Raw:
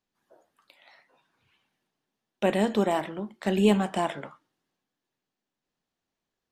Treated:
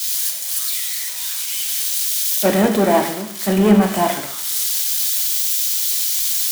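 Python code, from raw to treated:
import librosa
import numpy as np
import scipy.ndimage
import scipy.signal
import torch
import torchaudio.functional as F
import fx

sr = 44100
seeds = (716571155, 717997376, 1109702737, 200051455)

y = x + 0.5 * 10.0 ** (-16.0 / 20.0) * np.diff(np.sign(x), prepend=np.sign(x[:1]))
y = fx.leveller(y, sr, passes=2)
y = scipy.signal.sosfilt(scipy.signal.butter(2, 54.0, 'highpass', fs=sr, output='sos'), y)
y = fx.notch(y, sr, hz=2700.0, q=18.0)
y = fx.rev_gated(y, sr, seeds[0], gate_ms=380, shape='falling', drr_db=4.5)
y = 10.0 ** (-6.5 / 20.0) * np.tanh(y / 10.0 ** (-6.5 / 20.0))
y = fx.band_widen(y, sr, depth_pct=100)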